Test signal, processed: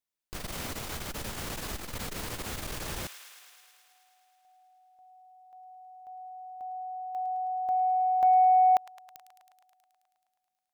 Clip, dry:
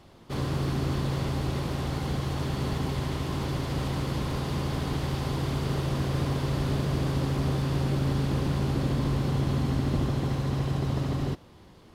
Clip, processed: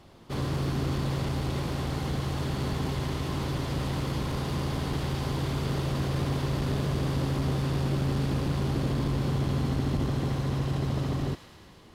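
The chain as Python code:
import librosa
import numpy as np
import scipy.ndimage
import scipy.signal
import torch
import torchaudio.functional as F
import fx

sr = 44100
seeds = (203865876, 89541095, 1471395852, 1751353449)

p1 = x + fx.echo_wet_highpass(x, sr, ms=107, feedback_pct=76, hz=1400.0, wet_db=-11.0, dry=0)
y = fx.transformer_sat(p1, sr, knee_hz=180.0)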